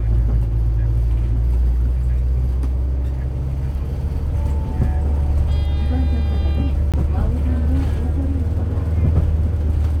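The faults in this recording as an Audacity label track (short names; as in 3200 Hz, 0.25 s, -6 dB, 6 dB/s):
6.920000	6.940000	gap 17 ms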